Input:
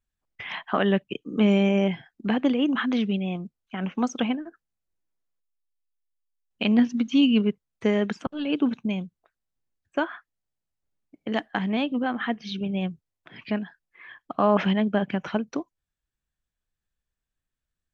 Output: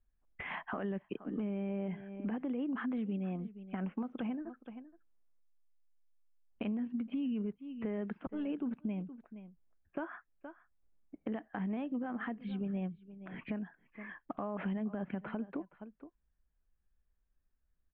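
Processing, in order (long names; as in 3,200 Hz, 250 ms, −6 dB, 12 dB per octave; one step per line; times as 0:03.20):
one scale factor per block 7 bits
Bessel low-pass filter 1,600 Hz, order 8
parametric band 110 Hz −14.5 dB 0.6 octaves
on a send: single-tap delay 469 ms −24 dB
on the sum: brickwall limiter −20.5 dBFS, peak gain reduction 10.5 dB
low-shelf EQ 150 Hz +10.5 dB
downward compressor 3 to 1, threshold −38 dBFS, peak gain reduction 13 dB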